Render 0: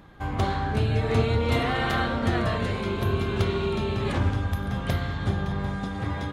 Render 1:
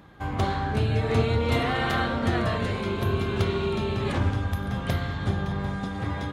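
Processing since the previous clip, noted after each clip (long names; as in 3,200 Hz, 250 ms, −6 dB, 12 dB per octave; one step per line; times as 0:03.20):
high-pass filter 53 Hz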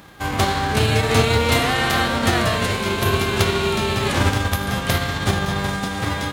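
spectral envelope flattened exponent 0.6
level +6 dB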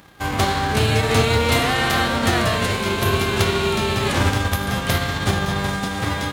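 leveller curve on the samples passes 1
level −3.5 dB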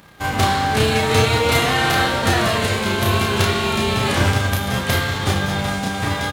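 double-tracking delay 32 ms −3 dB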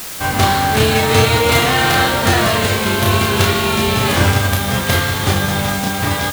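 background noise white −32 dBFS
level +3.5 dB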